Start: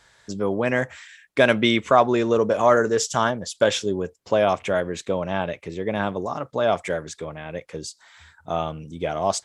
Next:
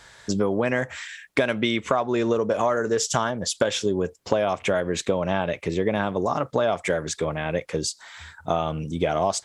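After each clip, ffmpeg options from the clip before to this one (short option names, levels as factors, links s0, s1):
-af "acompressor=threshold=0.0501:ratio=12,volume=2.37"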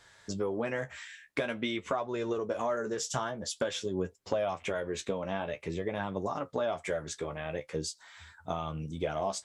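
-af "flanger=delay=9.9:depth=5.4:regen=35:speed=0.48:shape=triangular,volume=0.501"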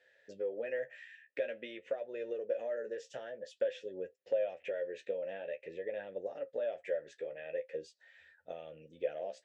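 -filter_complex "[0:a]asplit=3[s0][s1][s2];[s0]bandpass=f=530:t=q:w=8,volume=1[s3];[s1]bandpass=f=1840:t=q:w=8,volume=0.501[s4];[s2]bandpass=f=2480:t=q:w=8,volume=0.355[s5];[s3][s4][s5]amix=inputs=3:normalize=0,volume=1.41"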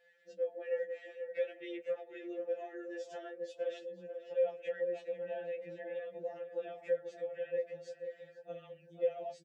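-filter_complex "[0:a]asplit=2[s0][s1];[s1]adelay=489,lowpass=f=1300:p=1,volume=0.447,asplit=2[s2][s3];[s3]adelay=489,lowpass=f=1300:p=1,volume=0.47,asplit=2[s4][s5];[s5]adelay=489,lowpass=f=1300:p=1,volume=0.47,asplit=2[s6][s7];[s7]adelay=489,lowpass=f=1300:p=1,volume=0.47,asplit=2[s8][s9];[s9]adelay=489,lowpass=f=1300:p=1,volume=0.47,asplit=2[s10][s11];[s11]adelay=489,lowpass=f=1300:p=1,volume=0.47[s12];[s0][s2][s4][s6][s8][s10][s12]amix=inputs=7:normalize=0,afftfilt=real='re*2.83*eq(mod(b,8),0)':imag='im*2.83*eq(mod(b,8),0)':win_size=2048:overlap=0.75"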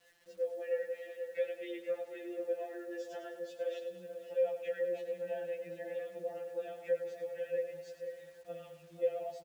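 -filter_complex "[0:a]acrusher=bits=10:mix=0:aa=0.000001,asplit=2[s0][s1];[s1]aecho=0:1:102|204|306|408|510|612:0.299|0.155|0.0807|0.042|0.0218|0.0114[s2];[s0][s2]amix=inputs=2:normalize=0"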